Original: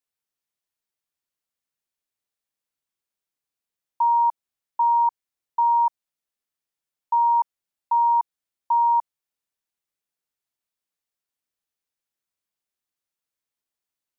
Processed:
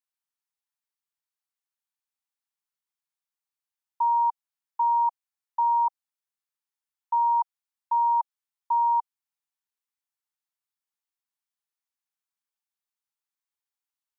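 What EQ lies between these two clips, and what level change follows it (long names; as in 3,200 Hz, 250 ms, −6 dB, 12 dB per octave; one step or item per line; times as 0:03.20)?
Chebyshev high-pass filter 780 Hz, order 5
parametric band 960 Hz +2.5 dB 0.77 octaves
−5.0 dB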